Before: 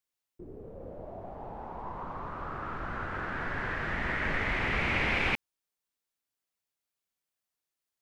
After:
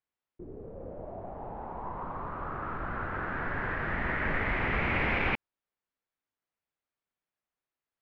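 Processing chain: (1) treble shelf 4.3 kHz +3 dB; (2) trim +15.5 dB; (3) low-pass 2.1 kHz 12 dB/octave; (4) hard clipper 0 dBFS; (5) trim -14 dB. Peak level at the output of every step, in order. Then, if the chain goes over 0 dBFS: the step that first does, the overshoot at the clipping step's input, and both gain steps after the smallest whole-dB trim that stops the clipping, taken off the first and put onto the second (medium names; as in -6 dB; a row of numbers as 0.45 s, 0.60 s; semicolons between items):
-16.0 dBFS, -0.5 dBFS, -3.0 dBFS, -3.0 dBFS, -17.0 dBFS; nothing clips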